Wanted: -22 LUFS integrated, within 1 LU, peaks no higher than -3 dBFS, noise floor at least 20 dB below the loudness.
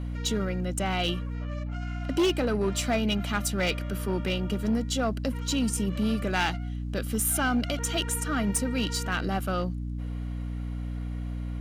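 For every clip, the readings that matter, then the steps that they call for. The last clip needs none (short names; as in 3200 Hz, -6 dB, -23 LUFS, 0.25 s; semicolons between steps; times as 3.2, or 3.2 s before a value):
clipped 1.1%; flat tops at -19.5 dBFS; hum 60 Hz; harmonics up to 300 Hz; hum level -30 dBFS; loudness -29.0 LUFS; peak -19.5 dBFS; loudness target -22.0 LUFS
-> clip repair -19.5 dBFS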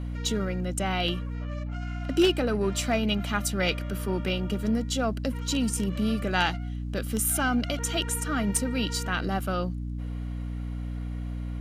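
clipped 0.0%; hum 60 Hz; harmonics up to 300 Hz; hum level -30 dBFS
-> de-hum 60 Hz, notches 5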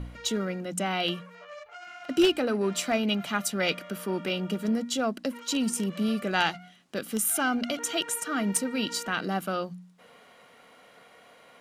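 hum none; loudness -28.5 LUFS; peak -10.5 dBFS; loudness target -22.0 LUFS
-> gain +6.5 dB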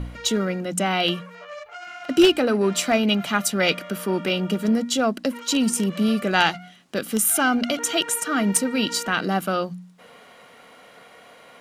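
loudness -22.0 LUFS; peak -4.0 dBFS; noise floor -49 dBFS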